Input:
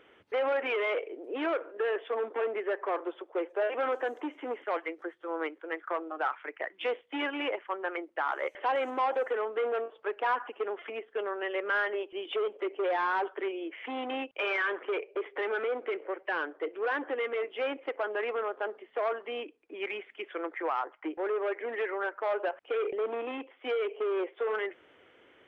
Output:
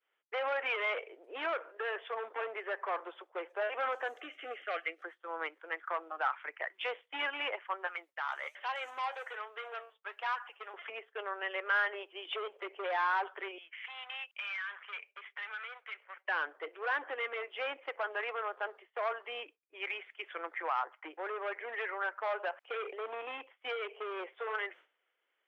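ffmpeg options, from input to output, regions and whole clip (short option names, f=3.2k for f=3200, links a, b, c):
-filter_complex "[0:a]asettb=1/sr,asplit=3[a][b][c];[a]atrim=end=4.174[d];[b]atrim=start=4.17:end=5.04,asetpts=PTS-STARTPTS,afade=t=in:d=0.004:c=qsin,afade=t=out:st=0.866:d=0.004:c=qsin,asuperstop=centerf=950:order=8:qfactor=2.9,equalizer=f=2.8k:t=o:w=0.58:g=6[e];[c]atrim=start=5.036[f];[d][e]acrossfade=d=0.004:c1=hsin:c2=qsin[g];[g][f]acrossfade=d=0.004:c1=qsin:c2=hsin,asettb=1/sr,asplit=3[h][i][j];[h]atrim=end=7.874[k];[i]atrim=start=7.87:end=10.74,asetpts=PTS-STARTPTS,afade=t=in:d=0.004:c=qsin,afade=t=out:st=2.866:d=0.004:c=qsin,highpass=f=730:p=1,highshelf=f=3.2k:g=9.5,flanger=delay=4.7:depth=4.3:regen=64:speed=1.2:shape=sinusoidal[l];[j]atrim=start=10.736[m];[k][l]acrossfade=d=0.004:c1=hsin:c2=qsin[n];[n][m]acrossfade=d=0.004:c1=qsin:c2=hsin,asettb=1/sr,asplit=3[o][p][q];[o]atrim=end=13.584[r];[p]atrim=start=13.58:end=16.25,asetpts=PTS-STARTPTS,afade=t=in:d=0.004:c=qsin,afade=t=out:st=2.666:d=0.004:c=qsin,highpass=1.5k,acompressor=threshold=-36dB:ratio=5:attack=3.2:release=140:knee=1:detection=peak[s];[q]atrim=start=16.246[t];[r][s]acrossfade=d=0.004:c1=hsin:c2=qsin[u];[u][t]acrossfade=d=0.004:c1=qsin:c2=hsin,highpass=780,agate=range=-33dB:threshold=-50dB:ratio=3:detection=peak"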